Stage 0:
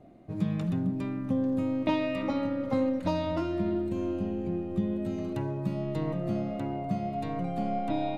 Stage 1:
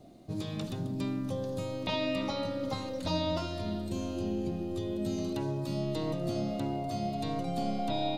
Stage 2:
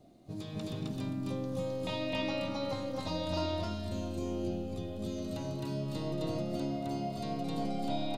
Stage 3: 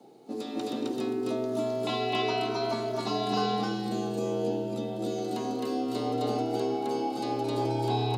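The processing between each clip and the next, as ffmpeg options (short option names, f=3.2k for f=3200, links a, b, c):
-filter_complex "[0:a]acrossover=split=3700[a][b];[b]acompressor=threshold=-59dB:ratio=4:attack=1:release=60[c];[a][c]amix=inputs=2:normalize=0,afftfilt=real='re*lt(hypot(re,im),0.282)':imag='im*lt(hypot(re,im),0.282)':win_size=1024:overlap=0.75,highshelf=f=3k:t=q:w=1.5:g=12"
-af "aecho=1:1:230.3|262.4:0.282|1,volume=-5.5dB"
-af "afreqshift=120,volume=5.5dB"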